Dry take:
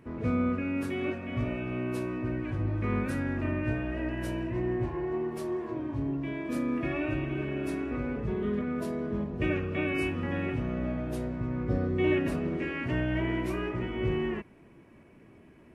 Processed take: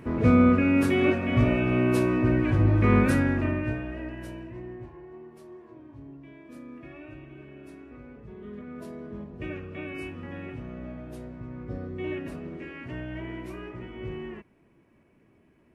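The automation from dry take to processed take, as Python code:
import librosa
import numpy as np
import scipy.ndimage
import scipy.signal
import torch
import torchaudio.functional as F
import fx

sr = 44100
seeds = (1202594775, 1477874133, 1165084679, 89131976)

y = fx.gain(x, sr, db=fx.line((3.11, 9.5), (3.79, -1.0), (5.07, -13.5), (8.27, -13.5), (8.85, -7.0)))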